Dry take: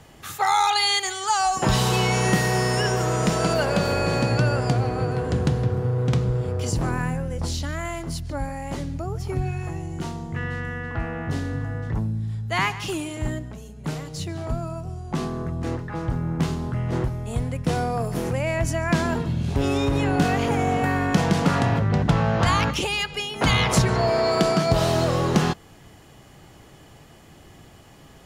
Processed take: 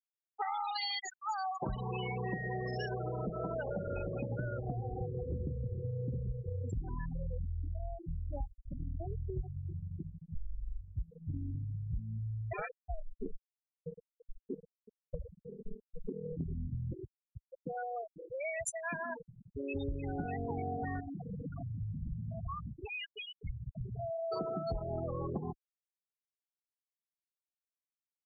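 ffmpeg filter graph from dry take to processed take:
ffmpeg -i in.wav -filter_complex "[0:a]asettb=1/sr,asplit=3[link_01][link_02][link_03];[link_01]atrim=end=10.344[link_04];[link_02]atrim=start=10.34:end=10.8,asetpts=PTS-STARTPTS,afade=type=in:duration=0.004:curve=qsin,afade=type=out:start_time=0.456:duration=0.004:curve=qsin,bandreject=frequency=50:width_type=h:width=6,bandreject=frequency=100:width_type=h:width=6,bandreject=frequency=150:width_type=h:width=6,bandreject=frequency=200:width_type=h:width=6,afreqshift=-140[link_05];[link_03]atrim=start=10.796[link_06];[link_04][link_05]acrossfade=duration=0.004:curve1=hsin:curve2=qsin[link_07];[link_07][link_06]acrossfade=duration=0.004:curve1=qsin:curve2=hsin,asettb=1/sr,asplit=3[link_08][link_09][link_10];[link_08]atrim=end=12.534[link_11];[link_09]atrim=start=12.53:end=16.37,asetpts=PTS-STARTPTS,afade=type=in:duration=0.004:curve=qsin,afade=type=out:start_time=3.836:duration=0.004:curve=qsin,aeval=exprs='val(0)*sin(2*PI*320*n/s)':channel_layout=same,aecho=1:1:186|372|558:0.106|0.036|0.0122,atrim=end_sample=169344[link_12];[link_10]atrim=start=16.366[link_13];[link_11][link_12]acrossfade=duration=0.004:curve1=hsin:curve2=qsin[link_14];[link_14][link_13]acrossfade=duration=0.004:curve1=qsin:curve2=hsin,asettb=1/sr,asplit=3[link_15][link_16][link_17];[link_15]atrim=end=16.934[link_18];[link_16]atrim=start=16.93:end=19.75,asetpts=PTS-STARTPTS,afade=type=in:duration=0.004:curve=qsin,afade=type=out:start_time=2.816:duration=0.004:curve=qsin,aemphasis=mode=production:type=riaa,aecho=1:1:365|730:0.0708|0.0127,atrim=end_sample=124362[link_19];[link_17]atrim=start=19.746[link_20];[link_18][link_19]acrossfade=duration=0.004:curve1=hsin:curve2=qsin[link_21];[link_21][link_20]acrossfade=duration=0.004:curve1=qsin:curve2=hsin,asettb=1/sr,asplit=3[link_22][link_23][link_24];[link_22]atrim=end=21.004[link_25];[link_23]atrim=start=21:end=24.32,asetpts=PTS-STARTPTS,afade=type=in:duration=0.004:curve=qsin,afade=type=out:start_time=3.316:duration=0.004:curve=qsin,volume=26.5dB,asoftclip=hard,volume=-26.5dB,asplit=2[link_26][link_27];[link_27]adelay=186,lowpass=frequency=1900:poles=1,volume=-12dB,asplit=2[link_28][link_29];[link_29]adelay=186,lowpass=frequency=1900:poles=1,volume=0.33,asplit=2[link_30][link_31];[link_31]adelay=186,lowpass=frequency=1900:poles=1,volume=0.33[link_32];[link_26][link_28][link_30][link_32]amix=inputs=4:normalize=0,atrim=end_sample=146412[link_33];[link_24]atrim=start=24.316[link_34];[link_25][link_33]acrossfade=duration=0.004:curve1=hsin:curve2=qsin[link_35];[link_35][link_34]acrossfade=duration=0.004:curve1=qsin:curve2=hsin,afftfilt=real='re*gte(hypot(re,im),0.2)':imag='im*gte(hypot(re,im),0.2)':win_size=1024:overlap=0.75,asubboost=boost=5.5:cutoff=54,acompressor=threshold=-27dB:ratio=6,volume=-7dB" out.wav

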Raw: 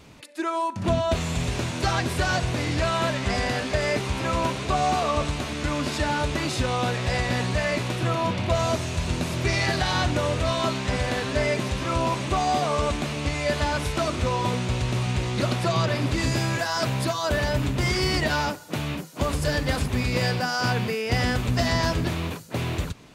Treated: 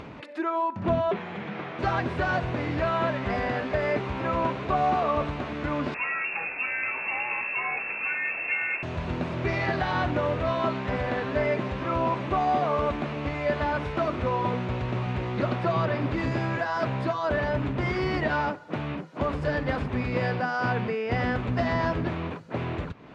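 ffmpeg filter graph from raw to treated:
ffmpeg -i in.wav -filter_complex "[0:a]asettb=1/sr,asplit=3[link_01][link_02][link_03];[link_01]atrim=end=1.114[link_04];[link_02]atrim=start=1.11:end=1.79,asetpts=PTS-STARTPTS,afade=type=in:duration=0.004:curve=qsin,afade=type=out:start_time=0.676:duration=0.004:curve=qsin,afreqshift=-260,highpass=270,lowpass=3400[link_05];[link_03]atrim=start=1.786[link_06];[link_04][link_05]acrossfade=duration=0.004:curve1=hsin:curve2=qsin[link_07];[link_07][link_06]acrossfade=duration=0.004:curve1=qsin:curve2=hsin,asettb=1/sr,asplit=3[link_08][link_09][link_10];[link_08]atrim=end=5.944[link_11];[link_09]atrim=start=5.94:end=8.83,asetpts=PTS-STARTPTS,afade=type=in:duration=0.004:curve=qsin,afade=type=out:start_time=2.886:duration=0.004:curve=qsin,aeval=exprs='val(0)+0.5*0.0251*sgn(val(0))':channel_layout=same,equalizer=frequency=2200:width=0.34:gain=-4,lowpass=frequency=2400:width_type=q:width=0.5098,lowpass=frequency=2400:width_type=q:width=0.6013,lowpass=frequency=2400:width_type=q:width=0.9,lowpass=frequency=2400:width_type=q:width=2.563,afreqshift=-2800[link_12];[link_10]atrim=start=8.826[link_13];[link_11][link_12]acrossfade=duration=0.004:curve1=hsin:curve2=qsin[link_14];[link_14][link_13]acrossfade=duration=0.004:curve1=qsin:curve2=hsin,lowpass=1900,lowshelf=frequency=100:gain=-10.5,acompressor=mode=upward:threshold=-32dB:ratio=2.5" out.wav

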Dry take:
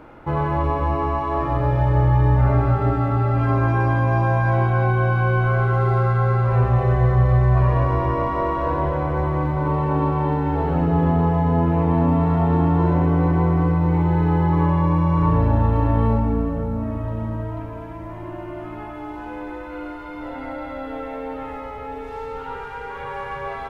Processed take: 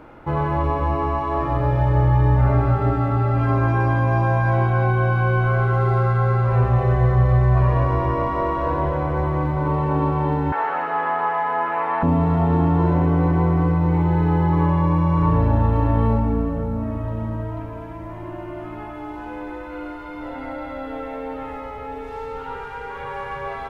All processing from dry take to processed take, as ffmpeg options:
ffmpeg -i in.wav -filter_complex "[0:a]asettb=1/sr,asplit=3[link_01][link_02][link_03];[link_01]atrim=end=10.524[link_04];[link_02]atrim=start=10.52:end=12.03,asetpts=PTS-STARTPTS,afade=type=in:duration=0.004:curve=qsin,afade=type=out:start_time=1.506:duration=0.004:curve=qsin,acrossover=split=2800[link_05][link_06];[link_06]acompressor=threshold=-59dB:ratio=4:attack=1:release=60[link_07];[link_05][link_07]amix=inputs=2:normalize=0,highpass=740,equalizer=frequency=1600:width=0.71:gain=12[link_08];[link_03]atrim=start=12.026[link_09];[link_04][link_08]acrossfade=duration=0.004:curve1=hsin:curve2=qsin[link_10];[link_10][link_09]acrossfade=duration=0.004:curve1=qsin:curve2=hsin" out.wav

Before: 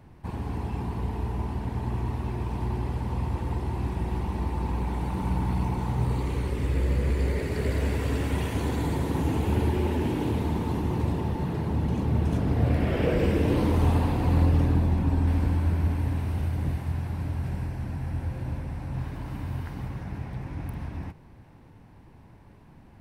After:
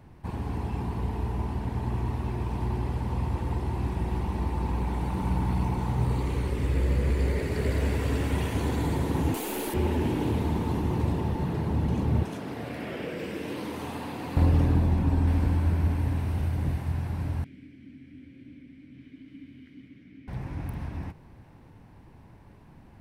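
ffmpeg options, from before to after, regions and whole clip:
ffmpeg -i in.wav -filter_complex "[0:a]asettb=1/sr,asplit=3[link_01][link_02][link_03];[link_01]atrim=end=9.344[link_04];[link_02]atrim=start=9.34:end=9.74,asetpts=PTS-STARTPTS,afade=type=in:duration=0.004:curve=qsin,afade=type=out:start_time=0.396:duration=0.004:curve=qsin,highpass=frequency=260:width=0.5412,highpass=frequency=260:width=1.3066,aemphasis=mode=production:type=75fm,aeval=exprs='clip(val(0),-1,0.0266)':channel_layout=same[link_05];[link_03]atrim=start=9.736[link_06];[link_04][link_05]acrossfade=duration=0.004:curve1=hsin:curve2=qsin[link_07];[link_07][link_06]acrossfade=duration=0.004:curve1=qsin:curve2=hsin,asettb=1/sr,asplit=3[link_08][link_09][link_10];[link_08]atrim=end=12.234[link_11];[link_09]atrim=start=12.23:end=14.37,asetpts=PTS-STARTPTS,afade=type=in:duration=0.004:curve=qsin,afade=type=out:start_time=2.136:duration=0.004:curve=qsin,highpass=200,acrossover=split=350|1300[link_12][link_13][link_14];[link_12]acompressor=threshold=-37dB:ratio=4[link_15];[link_13]acompressor=threshold=-40dB:ratio=4[link_16];[link_14]acompressor=threshold=-42dB:ratio=4[link_17];[link_15][link_16][link_17]amix=inputs=3:normalize=0[link_18];[link_10]atrim=start=14.366[link_19];[link_11][link_18]acrossfade=duration=0.004:curve1=hsin:curve2=qsin[link_20];[link_20][link_19]acrossfade=duration=0.004:curve1=qsin:curve2=hsin,asettb=1/sr,asplit=3[link_21][link_22][link_23];[link_21]atrim=end=17.444[link_24];[link_22]atrim=start=17.44:end=20.28,asetpts=PTS-STARTPTS,afade=type=in:duration=0.004:curve=qsin,afade=type=out:start_time=2.836:duration=0.004:curve=qsin,asplit=3[link_25][link_26][link_27];[link_25]bandpass=frequency=270:width_type=q:width=8,volume=0dB[link_28];[link_26]bandpass=frequency=2290:width_type=q:width=8,volume=-6dB[link_29];[link_27]bandpass=frequency=3010:width_type=q:width=8,volume=-9dB[link_30];[link_28][link_29][link_30]amix=inputs=3:normalize=0,highshelf=frequency=4000:gain=6.5[link_31];[link_23]atrim=start=20.276[link_32];[link_24][link_31]acrossfade=duration=0.004:curve1=hsin:curve2=qsin[link_33];[link_33][link_32]acrossfade=duration=0.004:curve1=qsin:curve2=hsin" out.wav

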